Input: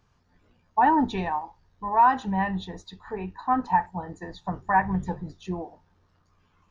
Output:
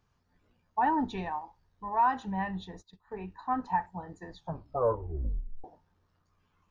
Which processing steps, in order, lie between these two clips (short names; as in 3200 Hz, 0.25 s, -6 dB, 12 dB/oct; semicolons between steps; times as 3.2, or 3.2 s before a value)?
1.98–3.29 gate -41 dBFS, range -14 dB; 4.37 tape stop 1.27 s; gain -7 dB